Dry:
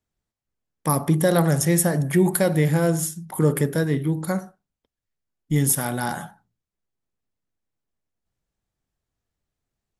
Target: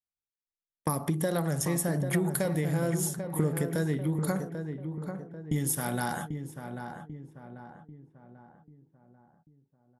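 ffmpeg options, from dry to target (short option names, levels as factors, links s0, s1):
-filter_complex "[0:a]agate=range=0.0562:threshold=0.0224:ratio=16:detection=peak,acompressor=threshold=0.0501:ratio=6,asplit=2[s0][s1];[s1]adelay=791,lowpass=f=1500:p=1,volume=0.447,asplit=2[s2][s3];[s3]adelay=791,lowpass=f=1500:p=1,volume=0.48,asplit=2[s4][s5];[s5]adelay=791,lowpass=f=1500:p=1,volume=0.48,asplit=2[s6][s7];[s7]adelay=791,lowpass=f=1500:p=1,volume=0.48,asplit=2[s8][s9];[s9]adelay=791,lowpass=f=1500:p=1,volume=0.48,asplit=2[s10][s11];[s11]adelay=791,lowpass=f=1500:p=1,volume=0.48[s12];[s0][s2][s4][s6][s8][s10][s12]amix=inputs=7:normalize=0"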